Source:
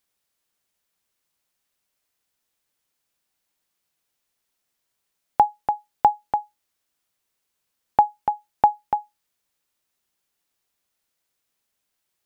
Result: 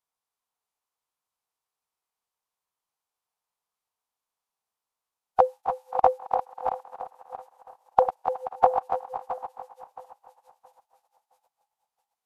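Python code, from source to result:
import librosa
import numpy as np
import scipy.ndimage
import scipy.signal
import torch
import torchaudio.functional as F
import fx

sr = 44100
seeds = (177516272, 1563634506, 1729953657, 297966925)

p1 = fx.reverse_delay_fb(x, sr, ms=335, feedback_pct=51, wet_db=-8.5)
p2 = fx.band_shelf(p1, sr, hz=920.0, db=11.0, octaves=1.0)
p3 = p2 + fx.echo_thinned(p2, sr, ms=268, feedback_pct=46, hz=230.0, wet_db=-15.5, dry=0)
p4 = fx.pitch_keep_formants(p3, sr, semitones=-8.5)
y = p4 * 10.0 ** (-12.0 / 20.0)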